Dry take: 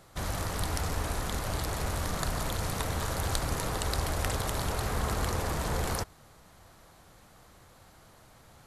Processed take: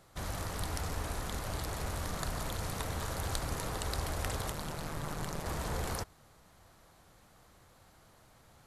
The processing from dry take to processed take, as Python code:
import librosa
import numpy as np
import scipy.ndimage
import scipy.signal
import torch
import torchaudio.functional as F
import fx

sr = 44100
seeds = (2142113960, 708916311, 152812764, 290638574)

y = fx.ring_mod(x, sr, carrier_hz=77.0, at=(4.52, 5.46))
y = y * 10.0 ** (-5.0 / 20.0)